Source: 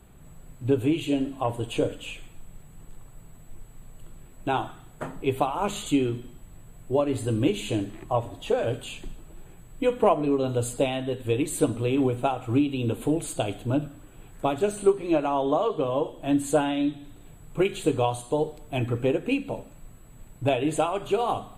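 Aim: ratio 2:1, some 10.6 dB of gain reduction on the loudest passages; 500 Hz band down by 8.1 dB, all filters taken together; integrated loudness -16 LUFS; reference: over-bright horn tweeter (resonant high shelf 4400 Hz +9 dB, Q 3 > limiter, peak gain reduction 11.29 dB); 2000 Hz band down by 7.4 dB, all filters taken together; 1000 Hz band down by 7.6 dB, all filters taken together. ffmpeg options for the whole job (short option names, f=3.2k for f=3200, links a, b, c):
-af "equalizer=f=500:t=o:g=-9,equalizer=f=1k:t=o:g=-5,equalizer=f=2k:t=o:g=-4.5,acompressor=threshold=-41dB:ratio=2,highshelf=f=4.4k:t=q:w=3:g=9,volume=24dB,alimiter=limit=-4.5dB:level=0:latency=1"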